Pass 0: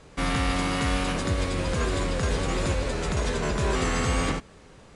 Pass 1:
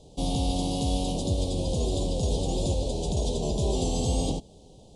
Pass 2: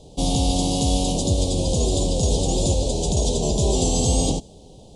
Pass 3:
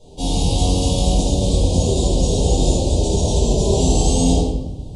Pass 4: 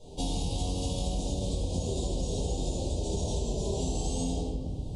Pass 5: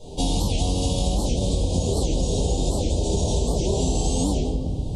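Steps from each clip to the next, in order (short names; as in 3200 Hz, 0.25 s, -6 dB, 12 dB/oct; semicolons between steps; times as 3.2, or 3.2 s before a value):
elliptic band-stop 790–3300 Hz, stop band 80 dB
dynamic EQ 7000 Hz, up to +7 dB, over -54 dBFS, Q 1.3; gain +6 dB
shoebox room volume 480 m³, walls mixed, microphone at 4.6 m; gain -8.5 dB
compressor 5:1, threshold -25 dBFS, peak gain reduction 13.5 dB; gain -3.5 dB
record warp 78 rpm, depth 250 cents; gain +8.5 dB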